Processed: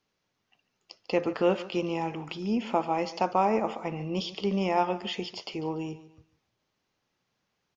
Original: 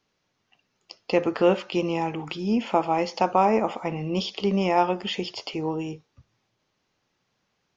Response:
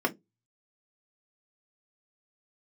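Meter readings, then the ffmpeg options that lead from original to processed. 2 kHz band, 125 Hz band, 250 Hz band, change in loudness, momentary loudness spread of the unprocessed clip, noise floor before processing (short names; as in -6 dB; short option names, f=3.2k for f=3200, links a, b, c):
-4.5 dB, -4.5 dB, -4.5 dB, -4.5 dB, 9 LU, -75 dBFS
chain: -af "aecho=1:1:145|290|435:0.15|0.0494|0.0163,volume=-4.5dB"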